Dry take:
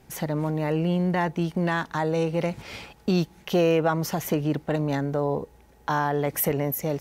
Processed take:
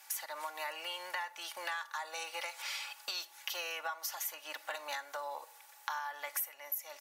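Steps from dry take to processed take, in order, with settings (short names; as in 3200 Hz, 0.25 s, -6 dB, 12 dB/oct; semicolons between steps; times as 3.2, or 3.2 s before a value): HPF 910 Hz 24 dB/oct; high shelf 5300 Hz +9 dB; comb 3.5 ms, depth 63%; compressor 6:1, threshold -39 dBFS, peak gain reduction 24.5 dB; reverb RT60 0.60 s, pre-delay 5 ms, DRR 16.5 dB; gain +2 dB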